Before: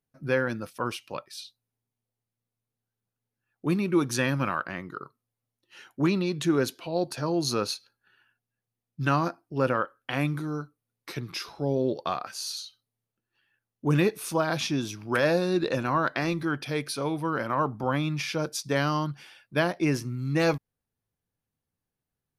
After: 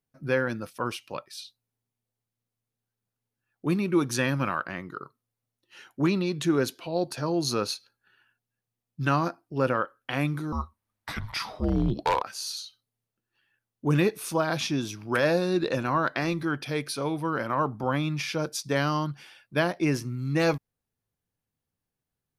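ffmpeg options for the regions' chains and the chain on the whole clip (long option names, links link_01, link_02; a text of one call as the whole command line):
ffmpeg -i in.wav -filter_complex "[0:a]asettb=1/sr,asplit=3[link_01][link_02][link_03];[link_01]atrim=end=10.524[link_04];[link_02]atrim=start=10.52:end=12.22,asetpts=PTS-STARTPTS,afade=type=in:duration=0.004:curve=qsin,afade=type=out:start_time=1.696:duration=0.004:curve=qsin,equalizer=frequency=1300:width_type=o:width=2:gain=8.5,afreqshift=-220,aeval=exprs='0.168*(abs(mod(val(0)/0.168+3,4)-2)-1)':channel_layout=same[link_05];[link_03]atrim=start=12.216[link_06];[link_04][link_05]acrossfade=duration=0.004:curve1=hsin:curve2=qsin[link_07];[link_07][link_06]acrossfade=duration=0.004:curve1=qsin:curve2=hsin" out.wav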